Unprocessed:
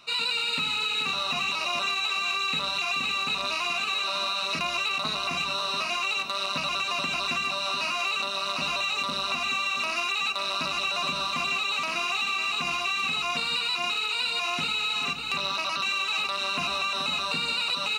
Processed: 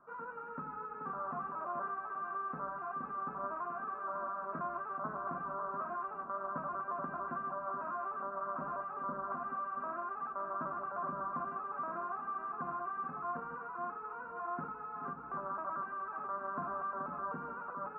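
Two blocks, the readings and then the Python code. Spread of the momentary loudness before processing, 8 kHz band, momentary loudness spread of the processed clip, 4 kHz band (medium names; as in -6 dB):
2 LU, under -40 dB, 3 LU, under -40 dB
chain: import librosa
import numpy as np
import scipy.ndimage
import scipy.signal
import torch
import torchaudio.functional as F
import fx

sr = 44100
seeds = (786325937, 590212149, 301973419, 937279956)

y = scipy.signal.sosfilt(scipy.signal.cheby1(6, 1.0, 1600.0, 'lowpass', fs=sr, output='sos'), x)
y = fx.peak_eq(y, sr, hz=76.0, db=-9.5, octaves=0.94)
y = y + 10.0 ** (-17.0 / 20.0) * np.pad(y, (int(829 * sr / 1000.0), 0))[:len(y)]
y = F.gain(torch.from_numpy(y), -5.5).numpy()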